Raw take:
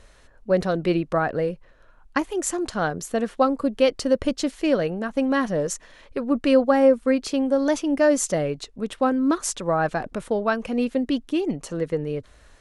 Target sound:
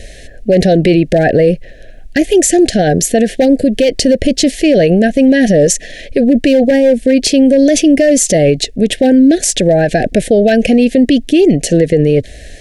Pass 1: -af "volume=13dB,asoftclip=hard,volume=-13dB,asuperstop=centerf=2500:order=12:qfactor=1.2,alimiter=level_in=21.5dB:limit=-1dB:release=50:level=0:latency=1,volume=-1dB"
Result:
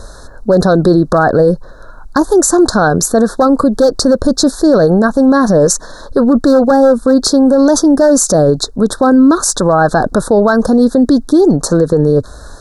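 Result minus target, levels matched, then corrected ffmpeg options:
1000 Hz band +7.0 dB
-af "volume=13dB,asoftclip=hard,volume=-13dB,asuperstop=centerf=1100:order=12:qfactor=1.2,alimiter=level_in=21.5dB:limit=-1dB:release=50:level=0:latency=1,volume=-1dB"

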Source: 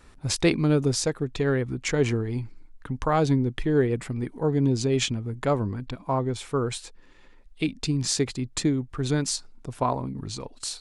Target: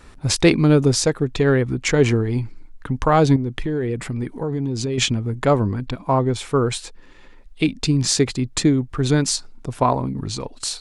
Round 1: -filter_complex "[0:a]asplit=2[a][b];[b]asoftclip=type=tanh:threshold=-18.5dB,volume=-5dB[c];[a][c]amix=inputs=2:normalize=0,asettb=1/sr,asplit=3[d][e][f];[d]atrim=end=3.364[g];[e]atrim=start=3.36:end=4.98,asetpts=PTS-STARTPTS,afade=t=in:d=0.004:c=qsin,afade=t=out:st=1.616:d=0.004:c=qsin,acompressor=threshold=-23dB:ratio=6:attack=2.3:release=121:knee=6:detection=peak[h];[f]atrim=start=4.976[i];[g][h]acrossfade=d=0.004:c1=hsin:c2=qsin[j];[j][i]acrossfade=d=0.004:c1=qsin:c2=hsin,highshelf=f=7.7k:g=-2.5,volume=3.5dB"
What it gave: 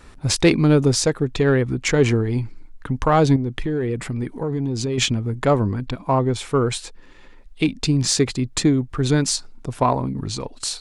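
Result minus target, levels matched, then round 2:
soft clip: distortion +10 dB
-filter_complex "[0:a]asplit=2[a][b];[b]asoftclip=type=tanh:threshold=-11.5dB,volume=-5dB[c];[a][c]amix=inputs=2:normalize=0,asettb=1/sr,asplit=3[d][e][f];[d]atrim=end=3.364[g];[e]atrim=start=3.36:end=4.98,asetpts=PTS-STARTPTS,afade=t=in:d=0.004:c=qsin,afade=t=out:st=1.616:d=0.004:c=qsin,acompressor=threshold=-23dB:ratio=6:attack=2.3:release=121:knee=6:detection=peak[h];[f]atrim=start=4.976[i];[g][h]acrossfade=d=0.004:c1=hsin:c2=qsin[j];[j][i]acrossfade=d=0.004:c1=qsin:c2=hsin,highshelf=f=7.7k:g=-2.5,volume=3.5dB"

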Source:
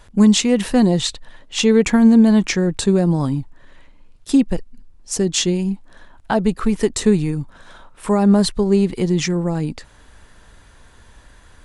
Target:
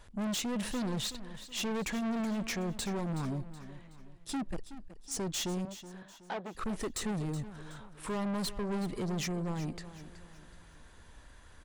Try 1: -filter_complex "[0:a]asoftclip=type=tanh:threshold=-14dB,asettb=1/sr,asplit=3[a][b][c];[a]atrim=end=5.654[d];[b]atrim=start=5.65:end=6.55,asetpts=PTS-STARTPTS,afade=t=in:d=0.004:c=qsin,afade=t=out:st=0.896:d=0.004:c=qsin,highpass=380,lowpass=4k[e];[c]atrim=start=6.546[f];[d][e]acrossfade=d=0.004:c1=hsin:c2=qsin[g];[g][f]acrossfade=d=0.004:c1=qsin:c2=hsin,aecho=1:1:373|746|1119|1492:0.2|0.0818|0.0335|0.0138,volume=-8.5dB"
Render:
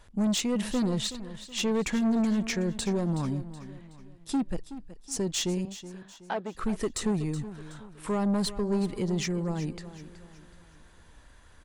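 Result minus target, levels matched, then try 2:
soft clip: distortion -6 dB
-filter_complex "[0:a]asoftclip=type=tanh:threshold=-23.5dB,asettb=1/sr,asplit=3[a][b][c];[a]atrim=end=5.654[d];[b]atrim=start=5.65:end=6.55,asetpts=PTS-STARTPTS,afade=t=in:d=0.004:c=qsin,afade=t=out:st=0.896:d=0.004:c=qsin,highpass=380,lowpass=4k[e];[c]atrim=start=6.546[f];[d][e]acrossfade=d=0.004:c1=hsin:c2=qsin[g];[g][f]acrossfade=d=0.004:c1=qsin:c2=hsin,aecho=1:1:373|746|1119|1492:0.2|0.0818|0.0335|0.0138,volume=-8.5dB"

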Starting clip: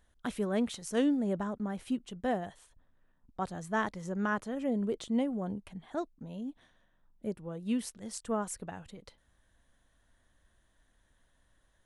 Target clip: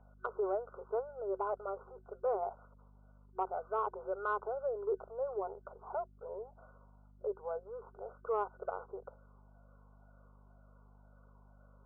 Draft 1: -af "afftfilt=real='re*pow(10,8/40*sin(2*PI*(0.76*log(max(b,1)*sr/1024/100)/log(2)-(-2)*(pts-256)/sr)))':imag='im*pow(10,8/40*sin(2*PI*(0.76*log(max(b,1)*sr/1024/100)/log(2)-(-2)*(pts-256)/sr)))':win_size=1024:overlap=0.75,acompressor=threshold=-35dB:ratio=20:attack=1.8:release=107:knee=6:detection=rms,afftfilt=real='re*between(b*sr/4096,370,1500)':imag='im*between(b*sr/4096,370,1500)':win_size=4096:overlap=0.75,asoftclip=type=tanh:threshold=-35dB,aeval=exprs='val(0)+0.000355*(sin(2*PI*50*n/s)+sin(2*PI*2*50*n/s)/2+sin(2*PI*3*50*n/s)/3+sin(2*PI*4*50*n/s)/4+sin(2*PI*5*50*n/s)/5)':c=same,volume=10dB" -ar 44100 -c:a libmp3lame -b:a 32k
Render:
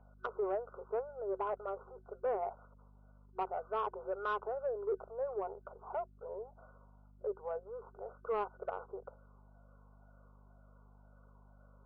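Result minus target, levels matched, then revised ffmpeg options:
soft clip: distortion +15 dB
-af "afftfilt=real='re*pow(10,8/40*sin(2*PI*(0.76*log(max(b,1)*sr/1024/100)/log(2)-(-2)*(pts-256)/sr)))':imag='im*pow(10,8/40*sin(2*PI*(0.76*log(max(b,1)*sr/1024/100)/log(2)-(-2)*(pts-256)/sr)))':win_size=1024:overlap=0.75,acompressor=threshold=-35dB:ratio=20:attack=1.8:release=107:knee=6:detection=rms,afftfilt=real='re*between(b*sr/4096,370,1500)':imag='im*between(b*sr/4096,370,1500)':win_size=4096:overlap=0.75,asoftclip=type=tanh:threshold=-26.5dB,aeval=exprs='val(0)+0.000355*(sin(2*PI*50*n/s)+sin(2*PI*2*50*n/s)/2+sin(2*PI*3*50*n/s)/3+sin(2*PI*4*50*n/s)/4+sin(2*PI*5*50*n/s)/5)':c=same,volume=10dB" -ar 44100 -c:a libmp3lame -b:a 32k

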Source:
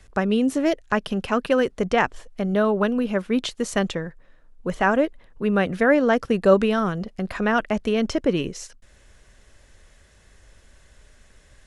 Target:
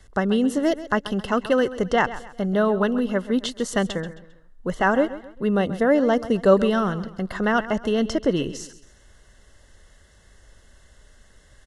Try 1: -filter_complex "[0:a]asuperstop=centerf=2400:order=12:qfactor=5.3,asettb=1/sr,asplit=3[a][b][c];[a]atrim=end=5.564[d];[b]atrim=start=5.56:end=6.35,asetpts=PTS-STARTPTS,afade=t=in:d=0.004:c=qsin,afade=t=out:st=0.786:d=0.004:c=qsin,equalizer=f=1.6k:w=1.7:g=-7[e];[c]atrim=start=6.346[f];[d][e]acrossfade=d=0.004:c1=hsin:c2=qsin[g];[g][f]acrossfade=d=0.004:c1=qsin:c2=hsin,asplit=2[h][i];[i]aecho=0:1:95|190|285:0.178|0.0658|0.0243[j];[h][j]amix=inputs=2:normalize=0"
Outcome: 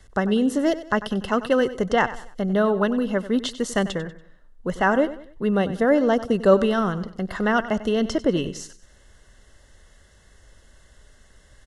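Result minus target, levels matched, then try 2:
echo 38 ms early
-filter_complex "[0:a]asuperstop=centerf=2400:order=12:qfactor=5.3,asettb=1/sr,asplit=3[a][b][c];[a]atrim=end=5.564[d];[b]atrim=start=5.56:end=6.35,asetpts=PTS-STARTPTS,afade=t=in:d=0.004:c=qsin,afade=t=out:st=0.786:d=0.004:c=qsin,equalizer=f=1.6k:w=1.7:g=-7[e];[c]atrim=start=6.346[f];[d][e]acrossfade=d=0.004:c1=hsin:c2=qsin[g];[g][f]acrossfade=d=0.004:c1=qsin:c2=hsin,asplit=2[h][i];[i]aecho=0:1:133|266|399:0.178|0.0658|0.0243[j];[h][j]amix=inputs=2:normalize=0"

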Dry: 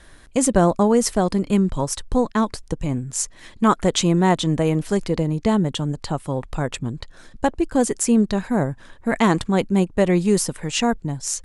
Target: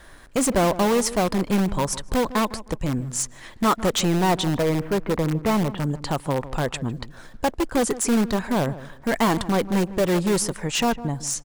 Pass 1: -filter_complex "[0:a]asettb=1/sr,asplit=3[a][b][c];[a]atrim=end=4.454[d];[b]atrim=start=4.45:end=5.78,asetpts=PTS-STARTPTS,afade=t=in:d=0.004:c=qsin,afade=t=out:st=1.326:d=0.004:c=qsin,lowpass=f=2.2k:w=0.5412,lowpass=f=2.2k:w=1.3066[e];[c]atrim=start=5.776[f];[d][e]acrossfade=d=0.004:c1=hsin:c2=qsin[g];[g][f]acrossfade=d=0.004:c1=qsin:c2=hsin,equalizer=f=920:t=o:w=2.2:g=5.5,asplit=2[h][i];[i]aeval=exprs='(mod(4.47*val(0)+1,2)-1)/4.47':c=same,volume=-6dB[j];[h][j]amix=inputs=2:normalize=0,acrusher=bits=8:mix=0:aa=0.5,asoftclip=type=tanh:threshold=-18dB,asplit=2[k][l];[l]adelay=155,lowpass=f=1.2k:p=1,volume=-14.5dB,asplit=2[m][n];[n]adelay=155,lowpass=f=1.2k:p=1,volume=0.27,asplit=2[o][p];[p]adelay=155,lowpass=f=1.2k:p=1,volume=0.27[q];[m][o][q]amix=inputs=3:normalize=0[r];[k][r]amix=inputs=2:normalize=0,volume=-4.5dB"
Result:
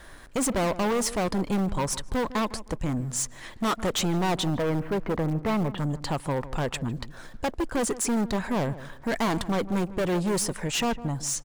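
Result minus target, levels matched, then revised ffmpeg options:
soft clip: distortion +9 dB
-filter_complex "[0:a]asettb=1/sr,asplit=3[a][b][c];[a]atrim=end=4.454[d];[b]atrim=start=4.45:end=5.78,asetpts=PTS-STARTPTS,afade=t=in:d=0.004:c=qsin,afade=t=out:st=1.326:d=0.004:c=qsin,lowpass=f=2.2k:w=0.5412,lowpass=f=2.2k:w=1.3066[e];[c]atrim=start=5.776[f];[d][e]acrossfade=d=0.004:c1=hsin:c2=qsin[g];[g][f]acrossfade=d=0.004:c1=qsin:c2=hsin,equalizer=f=920:t=o:w=2.2:g=5.5,asplit=2[h][i];[i]aeval=exprs='(mod(4.47*val(0)+1,2)-1)/4.47':c=same,volume=-6dB[j];[h][j]amix=inputs=2:normalize=0,acrusher=bits=8:mix=0:aa=0.5,asoftclip=type=tanh:threshold=-7.5dB,asplit=2[k][l];[l]adelay=155,lowpass=f=1.2k:p=1,volume=-14.5dB,asplit=2[m][n];[n]adelay=155,lowpass=f=1.2k:p=1,volume=0.27,asplit=2[o][p];[p]adelay=155,lowpass=f=1.2k:p=1,volume=0.27[q];[m][o][q]amix=inputs=3:normalize=0[r];[k][r]amix=inputs=2:normalize=0,volume=-4.5dB"

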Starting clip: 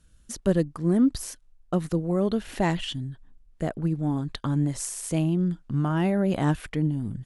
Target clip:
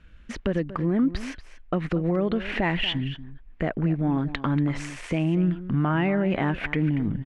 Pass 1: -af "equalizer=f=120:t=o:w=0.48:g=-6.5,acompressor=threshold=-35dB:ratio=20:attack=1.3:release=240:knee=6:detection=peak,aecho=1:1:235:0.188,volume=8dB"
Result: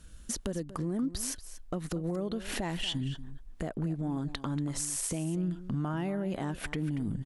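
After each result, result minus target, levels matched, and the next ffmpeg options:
compressor: peak gain reduction +9.5 dB; 2000 Hz band -4.0 dB
-af "equalizer=f=120:t=o:w=0.48:g=-6.5,acompressor=threshold=-25dB:ratio=20:attack=1.3:release=240:knee=6:detection=peak,aecho=1:1:235:0.188,volume=8dB"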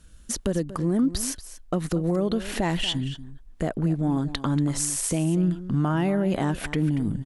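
2000 Hz band -5.5 dB
-af "lowpass=f=2.3k:t=q:w=2.5,equalizer=f=120:t=o:w=0.48:g=-6.5,acompressor=threshold=-25dB:ratio=20:attack=1.3:release=240:knee=6:detection=peak,aecho=1:1:235:0.188,volume=8dB"

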